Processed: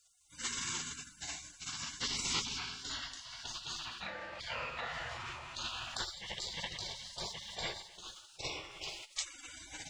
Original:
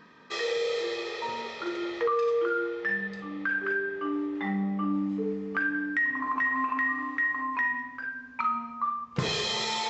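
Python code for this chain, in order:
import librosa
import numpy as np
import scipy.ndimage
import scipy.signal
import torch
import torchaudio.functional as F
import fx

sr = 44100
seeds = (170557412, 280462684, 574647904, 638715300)

y = fx.formant_shift(x, sr, semitones=5)
y = fx.spec_gate(y, sr, threshold_db=-30, keep='weak')
y = y * 10.0 ** (11.0 / 20.0)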